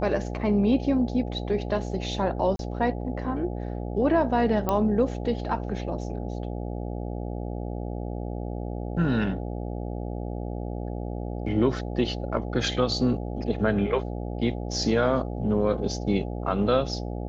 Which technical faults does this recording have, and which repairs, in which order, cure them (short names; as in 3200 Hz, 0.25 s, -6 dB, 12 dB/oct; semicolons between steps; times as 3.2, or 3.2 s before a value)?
buzz 60 Hz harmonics 14 -32 dBFS
2.56–2.59 gap 32 ms
4.69 pop -12 dBFS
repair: de-click; de-hum 60 Hz, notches 14; interpolate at 2.56, 32 ms